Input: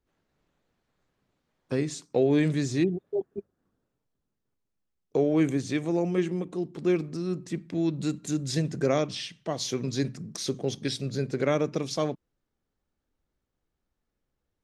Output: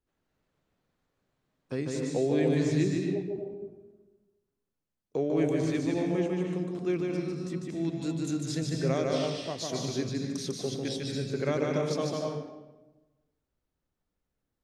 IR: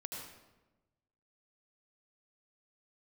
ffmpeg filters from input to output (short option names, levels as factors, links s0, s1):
-filter_complex "[0:a]asplit=2[s0][s1];[1:a]atrim=start_sample=2205,adelay=149[s2];[s1][s2]afir=irnorm=-1:irlink=0,volume=1.26[s3];[s0][s3]amix=inputs=2:normalize=0,volume=0.531"